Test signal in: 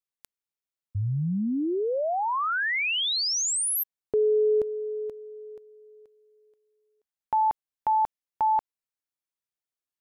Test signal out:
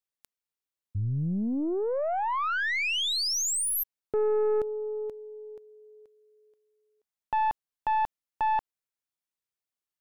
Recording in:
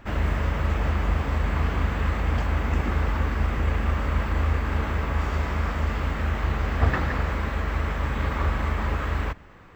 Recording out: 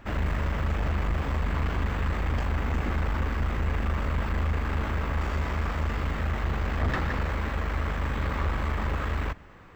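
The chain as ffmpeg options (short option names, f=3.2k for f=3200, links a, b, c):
-af "aeval=exprs='(tanh(11.2*val(0)+0.35)-tanh(0.35))/11.2':c=same"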